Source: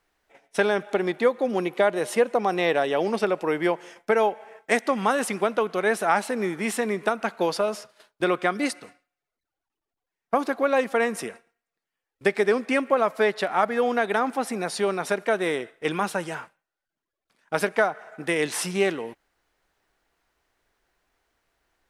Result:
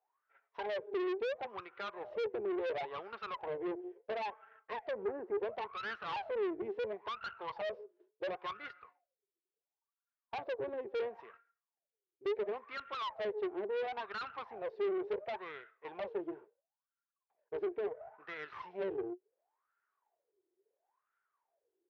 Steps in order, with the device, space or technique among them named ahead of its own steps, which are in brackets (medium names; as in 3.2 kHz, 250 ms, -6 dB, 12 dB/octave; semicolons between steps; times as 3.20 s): wah-wah guitar rig (wah-wah 0.72 Hz 350–1400 Hz, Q 17; valve stage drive 44 dB, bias 0.55; cabinet simulation 100–4000 Hz, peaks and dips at 170 Hz -5 dB, 260 Hz -8 dB, 410 Hz +5 dB, 750 Hz -3 dB, 1.3 kHz -5 dB); 4.91–5.38 s: resonant high shelf 2.3 kHz -13 dB, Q 1.5; trim +9.5 dB